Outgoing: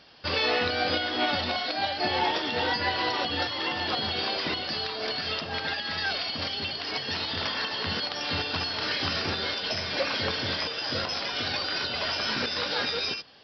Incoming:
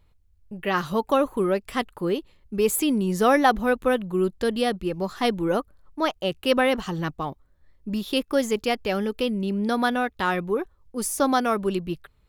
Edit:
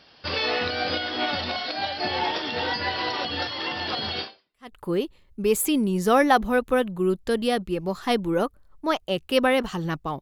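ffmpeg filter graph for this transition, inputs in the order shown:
ffmpeg -i cue0.wav -i cue1.wav -filter_complex "[0:a]apad=whole_dur=10.21,atrim=end=10.21,atrim=end=4.75,asetpts=PTS-STARTPTS[link_01];[1:a]atrim=start=1.35:end=7.35,asetpts=PTS-STARTPTS[link_02];[link_01][link_02]acrossfade=duration=0.54:curve1=exp:curve2=exp" out.wav

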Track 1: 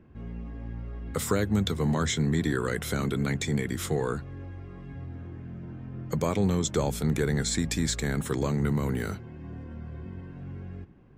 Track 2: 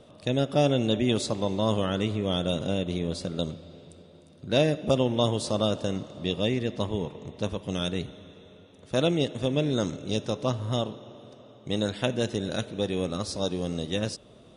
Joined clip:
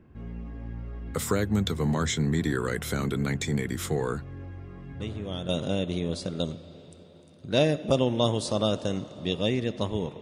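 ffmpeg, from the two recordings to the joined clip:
ffmpeg -i cue0.wav -i cue1.wav -filter_complex "[1:a]asplit=2[link_01][link_02];[0:a]apad=whole_dur=10.21,atrim=end=10.21,atrim=end=5.492[link_03];[link_02]atrim=start=2.478:end=7.2[link_04];[link_01]atrim=start=1.99:end=2.48,asetpts=PTS-STARTPTS,volume=-8dB,afade=type=in:duration=0.004:curve=hsin,afade=type=out:start_time=0.486:duration=0.004:curve=hsin,adelay=5000[link_05];[link_03][link_04]acrossfade=duration=0.004:curve1=hsin:curve2=hsin[link_06];[link_06][link_05]amix=inputs=2:normalize=0" out.wav

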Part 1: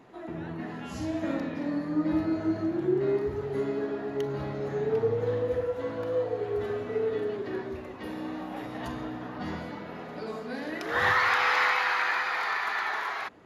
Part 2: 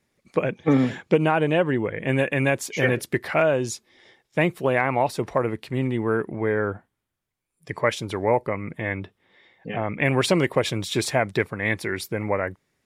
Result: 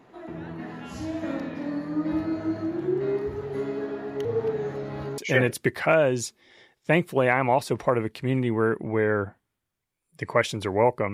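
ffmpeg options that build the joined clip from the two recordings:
ffmpeg -i cue0.wav -i cue1.wav -filter_complex "[0:a]apad=whole_dur=11.13,atrim=end=11.13,asplit=2[link_01][link_02];[link_01]atrim=end=4.252[link_03];[link_02]atrim=start=4.248:end=5.182,asetpts=PTS-STARTPTS,areverse[link_04];[1:a]atrim=start=2.658:end=8.61[link_05];[link_03][link_04]acrossfade=duration=0.004:curve1=hsin:curve2=hsin[link_06];[link_06][link_05]acrossfade=duration=0.004:curve1=hsin:curve2=hsin" out.wav

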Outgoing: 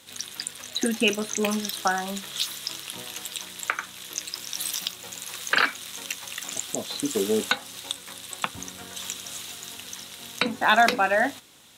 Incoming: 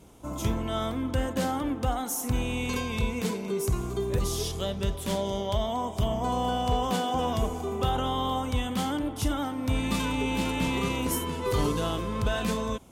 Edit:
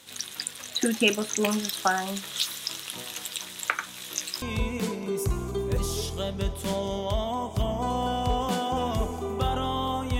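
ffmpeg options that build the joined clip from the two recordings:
ffmpeg -i cue0.wav -i cue1.wav -filter_complex "[0:a]asettb=1/sr,asplit=3[link_01][link_02][link_03];[link_01]atrim=end=3.854[link_04];[link_02]atrim=start=3.85:end=4.42,asetpts=PTS-STARTPTS,afade=type=in:duration=0.004:curve=qsin,afade=type=out:start_time=0.566:duration=0.004:curve=qsin,asplit=2[link_05][link_06];[link_06]adelay=16,volume=-6.5dB[link_07];[link_05][link_07]amix=inputs=2:normalize=0,atrim=end_sample=25137[link_08];[link_03]atrim=start=4.416[link_09];[link_04][link_08]acrossfade=duration=0.004:curve1=hsin:curve2=qsin[link_10];[link_10][link_09]acrossfade=duration=0.004:curve1=qsin:curve2=hsin,apad=whole_dur=10.19,atrim=end=10.19,atrim=end=4.422[link_11];[1:a]atrim=start=2.838:end=8.61[link_12];[link_11][link_12]acrossfade=duration=0.004:curve1=hsin:curve2=hsin" out.wav

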